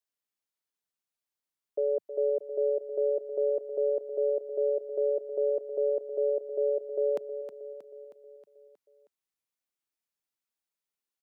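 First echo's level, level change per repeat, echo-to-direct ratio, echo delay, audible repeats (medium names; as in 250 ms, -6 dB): -11.0 dB, -5.0 dB, -9.5 dB, 316 ms, 5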